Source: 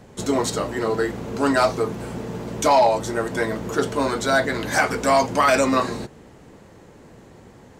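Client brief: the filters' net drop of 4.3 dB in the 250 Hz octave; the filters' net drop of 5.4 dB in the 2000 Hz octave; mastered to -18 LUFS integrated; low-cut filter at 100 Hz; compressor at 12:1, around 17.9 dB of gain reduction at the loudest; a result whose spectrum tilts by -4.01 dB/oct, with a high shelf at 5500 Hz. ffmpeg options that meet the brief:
-af "highpass=100,equalizer=f=250:t=o:g=-5,equalizer=f=2k:t=o:g=-8,highshelf=f=5.5k:g=3,acompressor=threshold=-32dB:ratio=12,volume=18dB"

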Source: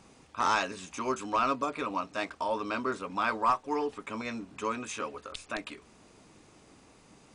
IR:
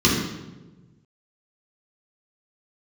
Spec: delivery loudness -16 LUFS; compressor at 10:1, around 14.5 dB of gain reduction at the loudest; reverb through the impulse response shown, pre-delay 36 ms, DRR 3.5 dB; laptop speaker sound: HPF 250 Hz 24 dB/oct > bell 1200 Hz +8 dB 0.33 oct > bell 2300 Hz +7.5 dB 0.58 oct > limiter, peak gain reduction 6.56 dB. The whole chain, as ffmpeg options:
-filter_complex "[0:a]acompressor=threshold=-37dB:ratio=10,asplit=2[a][b];[1:a]atrim=start_sample=2205,adelay=36[c];[b][c]afir=irnorm=-1:irlink=0,volume=-22.5dB[d];[a][d]amix=inputs=2:normalize=0,highpass=f=250:w=0.5412,highpass=f=250:w=1.3066,equalizer=f=1.2k:t=o:w=0.33:g=8,equalizer=f=2.3k:t=o:w=0.58:g=7.5,volume=21.5dB,alimiter=limit=-5.5dB:level=0:latency=1"

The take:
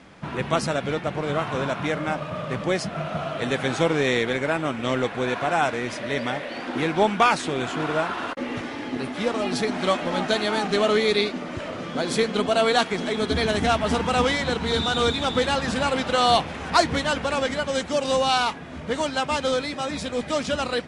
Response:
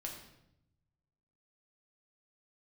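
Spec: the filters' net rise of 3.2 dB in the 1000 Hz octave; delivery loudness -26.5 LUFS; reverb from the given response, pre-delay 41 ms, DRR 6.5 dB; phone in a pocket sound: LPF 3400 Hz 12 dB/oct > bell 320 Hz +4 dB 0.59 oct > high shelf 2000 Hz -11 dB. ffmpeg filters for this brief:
-filter_complex "[0:a]equalizer=f=1k:t=o:g=7,asplit=2[a][b];[1:a]atrim=start_sample=2205,adelay=41[c];[b][c]afir=irnorm=-1:irlink=0,volume=-5dB[d];[a][d]amix=inputs=2:normalize=0,lowpass=3.4k,equalizer=f=320:t=o:w=0.59:g=4,highshelf=f=2k:g=-11,volume=-4.5dB"

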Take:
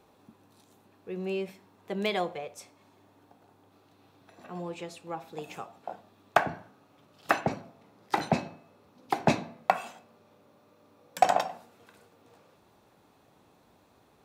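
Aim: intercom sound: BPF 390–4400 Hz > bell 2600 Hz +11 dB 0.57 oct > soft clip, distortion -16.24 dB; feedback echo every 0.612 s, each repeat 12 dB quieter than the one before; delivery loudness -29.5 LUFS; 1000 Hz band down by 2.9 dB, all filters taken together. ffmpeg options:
-af "highpass=390,lowpass=4.4k,equalizer=f=1k:t=o:g=-4.5,equalizer=f=2.6k:t=o:w=0.57:g=11,aecho=1:1:612|1224|1836:0.251|0.0628|0.0157,asoftclip=threshold=-11.5dB,volume=4.5dB"

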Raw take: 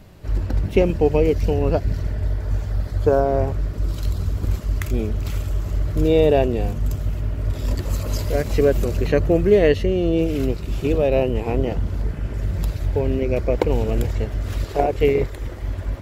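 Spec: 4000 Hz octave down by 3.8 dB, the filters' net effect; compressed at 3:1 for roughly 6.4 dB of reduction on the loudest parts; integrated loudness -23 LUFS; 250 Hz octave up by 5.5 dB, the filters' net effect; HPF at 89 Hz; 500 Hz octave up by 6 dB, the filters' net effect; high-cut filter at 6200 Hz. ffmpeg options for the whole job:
-af "highpass=89,lowpass=6.2k,equalizer=f=250:t=o:g=5.5,equalizer=f=500:t=o:g=5.5,equalizer=f=4k:t=o:g=-5,acompressor=threshold=-14dB:ratio=3,volume=-2dB"

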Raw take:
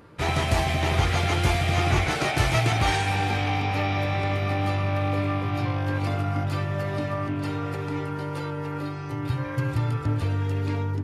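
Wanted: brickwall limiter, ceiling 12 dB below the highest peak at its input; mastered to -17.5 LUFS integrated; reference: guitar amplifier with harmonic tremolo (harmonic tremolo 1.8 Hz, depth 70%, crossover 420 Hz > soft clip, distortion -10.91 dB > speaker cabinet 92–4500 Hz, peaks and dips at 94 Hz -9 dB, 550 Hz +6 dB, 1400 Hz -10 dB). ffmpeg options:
-filter_complex "[0:a]alimiter=limit=-22.5dB:level=0:latency=1,acrossover=split=420[a][b];[a]aeval=exprs='val(0)*(1-0.7/2+0.7/2*cos(2*PI*1.8*n/s))':c=same[c];[b]aeval=exprs='val(0)*(1-0.7/2-0.7/2*cos(2*PI*1.8*n/s))':c=same[d];[c][d]amix=inputs=2:normalize=0,asoftclip=threshold=-34.5dB,highpass=92,equalizer=f=94:t=q:w=4:g=-9,equalizer=f=550:t=q:w=4:g=6,equalizer=f=1.4k:t=q:w=4:g=-10,lowpass=f=4.5k:w=0.5412,lowpass=f=4.5k:w=1.3066,volume=23dB"

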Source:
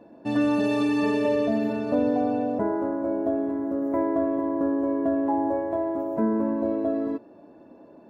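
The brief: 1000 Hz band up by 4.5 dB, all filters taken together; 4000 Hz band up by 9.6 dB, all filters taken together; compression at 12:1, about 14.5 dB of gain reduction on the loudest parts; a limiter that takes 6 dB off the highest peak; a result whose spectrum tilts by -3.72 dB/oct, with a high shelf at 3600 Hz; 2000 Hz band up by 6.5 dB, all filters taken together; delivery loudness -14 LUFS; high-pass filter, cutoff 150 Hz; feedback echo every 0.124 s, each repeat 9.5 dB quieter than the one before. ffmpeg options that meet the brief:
-af "highpass=150,equalizer=f=1k:t=o:g=4.5,equalizer=f=2k:t=o:g=3.5,highshelf=f=3.6k:g=5,equalizer=f=4k:t=o:g=7,acompressor=threshold=-33dB:ratio=12,alimiter=level_in=5.5dB:limit=-24dB:level=0:latency=1,volume=-5.5dB,aecho=1:1:124|248|372|496:0.335|0.111|0.0365|0.012,volume=23.5dB"

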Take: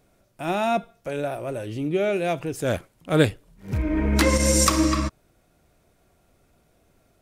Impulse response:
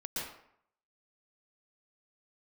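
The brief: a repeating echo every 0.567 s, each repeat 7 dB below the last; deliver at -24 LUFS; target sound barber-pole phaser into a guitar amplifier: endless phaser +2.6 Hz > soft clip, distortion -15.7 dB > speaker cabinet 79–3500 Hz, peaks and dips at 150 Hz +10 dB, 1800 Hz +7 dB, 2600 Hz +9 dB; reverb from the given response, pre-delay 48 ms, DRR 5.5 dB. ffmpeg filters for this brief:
-filter_complex "[0:a]aecho=1:1:567|1134|1701|2268|2835:0.447|0.201|0.0905|0.0407|0.0183,asplit=2[a][b];[1:a]atrim=start_sample=2205,adelay=48[c];[b][c]afir=irnorm=-1:irlink=0,volume=-8dB[d];[a][d]amix=inputs=2:normalize=0,asplit=2[e][f];[f]afreqshift=2.6[g];[e][g]amix=inputs=2:normalize=1,asoftclip=threshold=-16.5dB,highpass=79,equalizer=f=150:t=q:w=4:g=10,equalizer=f=1.8k:t=q:w=4:g=7,equalizer=f=2.6k:t=q:w=4:g=9,lowpass=f=3.5k:w=0.5412,lowpass=f=3.5k:w=1.3066,volume=1.5dB"

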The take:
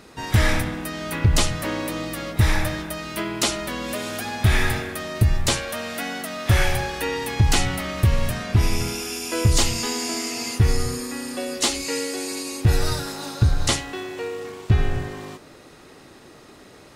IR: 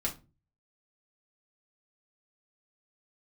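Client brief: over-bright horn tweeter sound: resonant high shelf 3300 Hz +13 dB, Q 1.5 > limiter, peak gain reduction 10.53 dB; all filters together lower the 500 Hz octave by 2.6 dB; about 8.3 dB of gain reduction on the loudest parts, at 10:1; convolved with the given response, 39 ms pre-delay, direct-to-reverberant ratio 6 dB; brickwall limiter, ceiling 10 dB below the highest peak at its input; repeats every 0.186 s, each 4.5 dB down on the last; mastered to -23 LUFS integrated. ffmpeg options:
-filter_complex "[0:a]equalizer=f=500:t=o:g=-3,acompressor=threshold=-21dB:ratio=10,alimiter=limit=-20dB:level=0:latency=1,aecho=1:1:186|372|558|744|930|1116|1302|1488|1674:0.596|0.357|0.214|0.129|0.0772|0.0463|0.0278|0.0167|0.01,asplit=2[a][b];[1:a]atrim=start_sample=2205,adelay=39[c];[b][c]afir=irnorm=-1:irlink=0,volume=-10dB[d];[a][d]amix=inputs=2:normalize=0,highshelf=f=3.3k:t=q:w=1.5:g=13,volume=-1dB,alimiter=limit=-14.5dB:level=0:latency=1"

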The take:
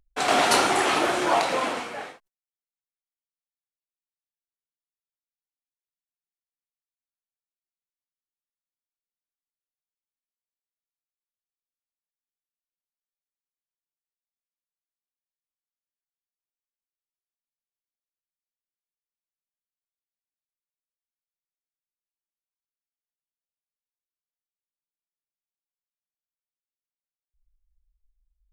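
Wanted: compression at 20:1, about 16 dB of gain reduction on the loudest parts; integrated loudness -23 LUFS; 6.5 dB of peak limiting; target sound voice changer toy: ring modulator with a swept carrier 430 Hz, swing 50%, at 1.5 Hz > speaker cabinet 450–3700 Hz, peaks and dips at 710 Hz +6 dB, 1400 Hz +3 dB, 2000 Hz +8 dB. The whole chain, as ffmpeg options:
-af "acompressor=threshold=-32dB:ratio=20,alimiter=level_in=4dB:limit=-24dB:level=0:latency=1,volume=-4dB,aeval=exprs='val(0)*sin(2*PI*430*n/s+430*0.5/1.5*sin(2*PI*1.5*n/s))':c=same,highpass=450,equalizer=f=710:t=q:w=4:g=6,equalizer=f=1.4k:t=q:w=4:g=3,equalizer=f=2k:t=q:w=4:g=8,lowpass=f=3.7k:w=0.5412,lowpass=f=3.7k:w=1.3066,volume=15.5dB"

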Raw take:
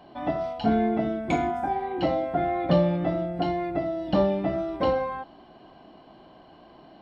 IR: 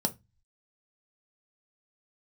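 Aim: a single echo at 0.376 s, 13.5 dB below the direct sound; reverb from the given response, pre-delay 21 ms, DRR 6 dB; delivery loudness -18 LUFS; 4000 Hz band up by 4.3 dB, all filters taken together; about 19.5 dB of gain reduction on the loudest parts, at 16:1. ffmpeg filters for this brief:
-filter_complex "[0:a]equalizer=f=4k:t=o:g=6,acompressor=threshold=-36dB:ratio=16,aecho=1:1:376:0.211,asplit=2[a][b];[1:a]atrim=start_sample=2205,adelay=21[c];[b][c]afir=irnorm=-1:irlink=0,volume=-11.5dB[d];[a][d]amix=inputs=2:normalize=0,volume=20.5dB"

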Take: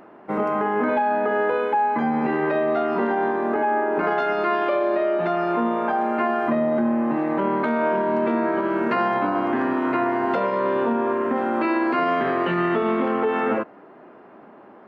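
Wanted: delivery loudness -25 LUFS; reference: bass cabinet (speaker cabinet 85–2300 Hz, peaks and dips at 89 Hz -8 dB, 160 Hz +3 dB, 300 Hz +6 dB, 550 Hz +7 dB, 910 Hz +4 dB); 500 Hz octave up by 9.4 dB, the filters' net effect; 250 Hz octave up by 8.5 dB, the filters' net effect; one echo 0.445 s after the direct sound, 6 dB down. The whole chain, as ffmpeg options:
-af "highpass=f=85:w=0.5412,highpass=f=85:w=1.3066,equalizer=f=89:t=q:w=4:g=-8,equalizer=f=160:t=q:w=4:g=3,equalizer=f=300:t=q:w=4:g=6,equalizer=f=550:t=q:w=4:g=7,equalizer=f=910:t=q:w=4:g=4,lowpass=f=2.3k:w=0.5412,lowpass=f=2.3k:w=1.3066,equalizer=f=250:t=o:g=4.5,equalizer=f=500:t=o:g=6.5,aecho=1:1:445:0.501,volume=-11.5dB"

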